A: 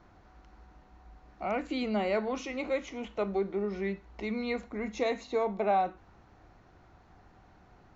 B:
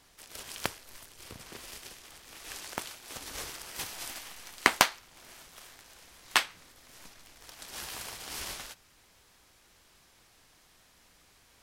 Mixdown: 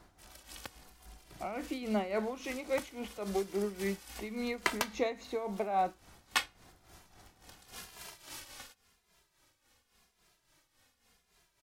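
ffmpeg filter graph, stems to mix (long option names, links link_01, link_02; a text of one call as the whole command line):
ffmpeg -i stem1.wav -i stem2.wav -filter_complex "[0:a]volume=-0.5dB[link_01];[1:a]asplit=2[link_02][link_03];[link_03]adelay=2.5,afreqshift=-0.88[link_04];[link_02][link_04]amix=inputs=2:normalize=1,volume=-2.5dB[link_05];[link_01][link_05]amix=inputs=2:normalize=0,tremolo=f=3.6:d=0.69" out.wav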